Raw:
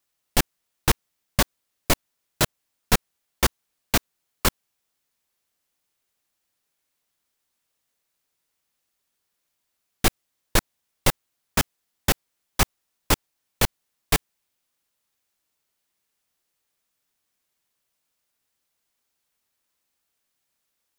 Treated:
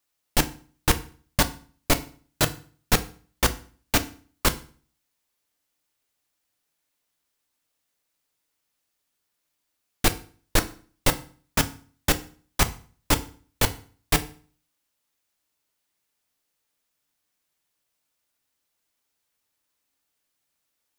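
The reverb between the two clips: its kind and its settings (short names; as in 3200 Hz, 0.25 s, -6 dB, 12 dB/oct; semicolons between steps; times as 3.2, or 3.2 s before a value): FDN reverb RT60 0.43 s, low-frequency decay 1.2×, high-frequency decay 0.9×, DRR 8.5 dB; gain -1 dB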